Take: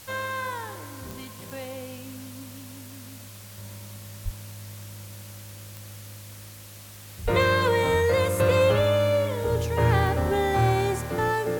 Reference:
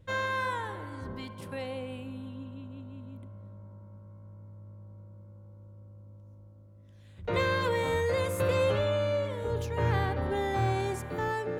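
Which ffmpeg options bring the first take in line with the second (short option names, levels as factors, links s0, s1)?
-filter_complex "[0:a]adeclick=t=4,asplit=3[s0][s1][s2];[s0]afade=t=out:st=4.24:d=0.02[s3];[s1]highpass=f=140:w=0.5412,highpass=f=140:w=1.3066,afade=t=in:st=4.24:d=0.02,afade=t=out:st=4.36:d=0.02[s4];[s2]afade=t=in:st=4.36:d=0.02[s5];[s3][s4][s5]amix=inputs=3:normalize=0,asplit=3[s6][s7][s8];[s6]afade=t=out:st=7.24:d=0.02[s9];[s7]highpass=f=140:w=0.5412,highpass=f=140:w=1.3066,afade=t=in:st=7.24:d=0.02,afade=t=out:st=7.36:d=0.02[s10];[s8]afade=t=in:st=7.36:d=0.02[s11];[s9][s10][s11]amix=inputs=3:normalize=0,afwtdn=0.005,asetnsamples=n=441:p=0,asendcmd='3.58 volume volume -6.5dB',volume=1"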